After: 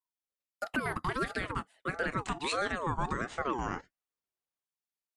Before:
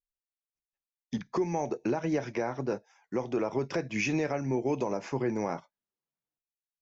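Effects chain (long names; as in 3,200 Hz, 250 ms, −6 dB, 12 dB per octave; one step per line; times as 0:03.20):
gliding playback speed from 189% → 75%
ring modulator whose carrier an LFO sweeps 760 Hz, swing 35%, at 1.5 Hz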